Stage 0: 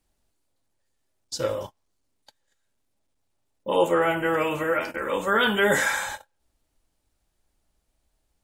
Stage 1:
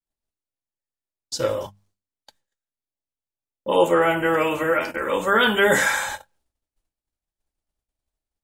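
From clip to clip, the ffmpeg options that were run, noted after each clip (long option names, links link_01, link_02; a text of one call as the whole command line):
ffmpeg -i in.wav -af "agate=range=-33dB:threshold=-59dB:ratio=3:detection=peak,bandreject=frequency=50:width_type=h:width=6,bandreject=frequency=100:width_type=h:width=6,bandreject=frequency=150:width_type=h:width=6,bandreject=frequency=200:width_type=h:width=6,volume=3.5dB" out.wav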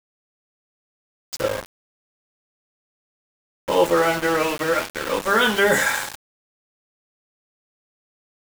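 ffmpeg -i in.wav -af "aeval=exprs='val(0)*gte(abs(val(0)),0.0631)':channel_layout=same" out.wav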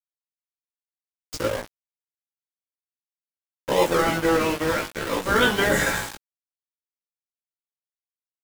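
ffmpeg -i in.wav -filter_complex "[0:a]asplit=2[link_01][link_02];[link_02]acrusher=samples=41:mix=1:aa=0.000001:lfo=1:lforange=24.6:lforate=2.3,volume=-5.5dB[link_03];[link_01][link_03]amix=inputs=2:normalize=0,flanger=delay=16:depth=3.1:speed=0.54" out.wav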